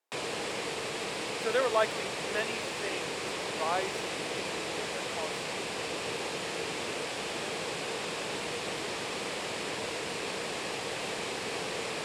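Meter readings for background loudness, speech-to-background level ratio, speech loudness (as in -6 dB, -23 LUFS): -34.5 LUFS, 0.5 dB, -34.0 LUFS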